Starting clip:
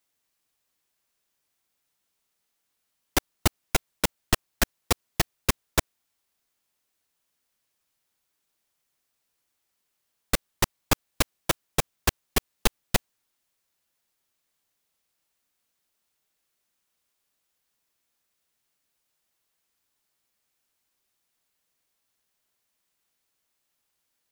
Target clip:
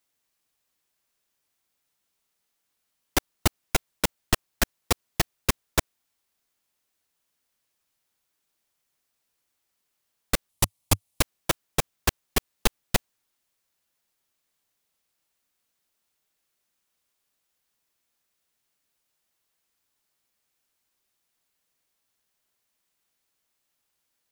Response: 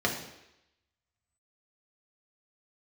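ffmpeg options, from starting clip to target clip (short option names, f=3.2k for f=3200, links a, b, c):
-filter_complex "[0:a]asettb=1/sr,asplit=3[a][b][c];[a]atrim=end=10.494[d];[b]atrim=start=10.49:end=11.21,asetpts=PTS-STARTPTS,afade=t=in:d=0.004:c=qsin,afade=t=out:st=0.716:d=0.004:c=qsin,equalizer=f=100:t=o:w=0.67:g=7,equalizer=f=400:t=o:w=0.67:g=-5,equalizer=f=1.6k:t=o:w=0.67:g=-9,equalizer=f=10k:t=o:w=0.67:g=7[e];[c]atrim=start=11.206[f];[d][e]acrossfade=d=0.004:c1=hsin:c2=qsin[g];[g][f]acrossfade=d=0.004:c1=qsin:c2=hsin"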